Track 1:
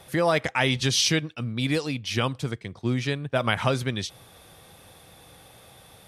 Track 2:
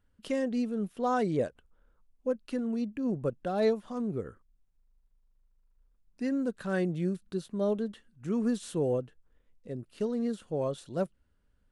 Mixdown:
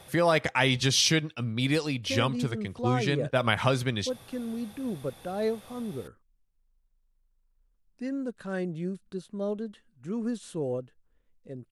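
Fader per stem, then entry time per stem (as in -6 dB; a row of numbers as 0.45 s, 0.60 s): -1.0 dB, -2.5 dB; 0.00 s, 1.80 s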